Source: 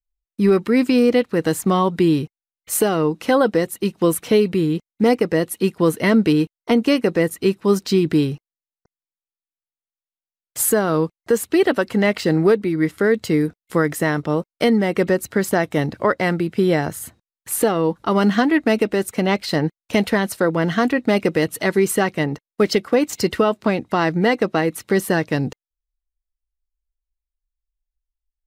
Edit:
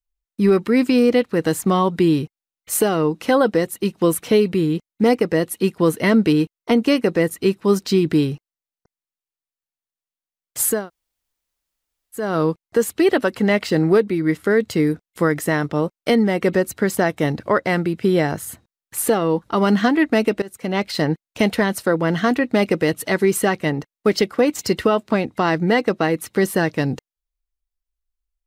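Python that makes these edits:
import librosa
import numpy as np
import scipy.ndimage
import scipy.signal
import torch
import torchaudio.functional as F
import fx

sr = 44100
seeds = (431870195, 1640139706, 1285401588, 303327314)

y = fx.edit(x, sr, fx.insert_room_tone(at_s=10.78, length_s=1.46, crossfade_s=0.24),
    fx.fade_in_from(start_s=18.96, length_s=0.48, floor_db=-20.5), tone=tone)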